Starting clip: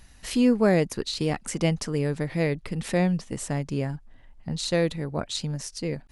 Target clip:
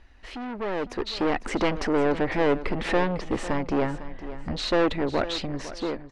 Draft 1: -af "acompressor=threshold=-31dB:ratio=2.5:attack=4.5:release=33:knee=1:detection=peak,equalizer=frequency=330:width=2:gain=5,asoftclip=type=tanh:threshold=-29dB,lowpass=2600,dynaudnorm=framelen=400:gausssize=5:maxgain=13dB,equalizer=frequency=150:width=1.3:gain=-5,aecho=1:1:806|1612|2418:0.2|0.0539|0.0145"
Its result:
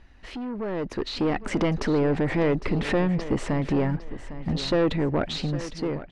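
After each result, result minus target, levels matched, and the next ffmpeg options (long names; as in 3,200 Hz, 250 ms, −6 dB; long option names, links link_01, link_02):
echo 304 ms late; downward compressor: peak gain reduction +10 dB; 125 Hz band +6.5 dB
-af "acompressor=threshold=-31dB:ratio=2.5:attack=4.5:release=33:knee=1:detection=peak,equalizer=frequency=330:width=2:gain=5,asoftclip=type=tanh:threshold=-29dB,lowpass=2600,dynaudnorm=framelen=400:gausssize=5:maxgain=13dB,equalizer=frequency=150:width=1.3:gain=-5,aecho=1:1:502|1004|1506:0.2|0.0539|0.0145"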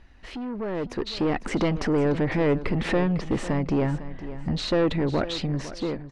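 downward compressor: peak gain reduction +10 dB; 125 Hz band +7.0 dB
-af "equalizer=frequency=330:width=2:gain=5,asoftclip=type=tanh:threshold=-29dB,lowpass=2600,dynaudnorm=framelen=400:gausssize=5:maxgain=13dB,equalizer=frequency=150:width=1.3:gain=-5,aecho=1:1:502|1004|1506:0.2|0.0539|0.0145"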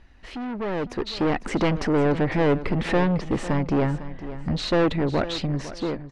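125 Hz band +6.5 dB
-af "equalizer=frequency=330:width=2:gain=5,asoftclip=type=tanh:threshold=-29dB,lowpass=2600,dynaudnorm=framelen=400:gausssize=5:maxgain=13dB,equalizer=frequency=150:width=1.3:gain=-15,aecho=1:1:502|1004|1506:0.2|0.0539|0.0145"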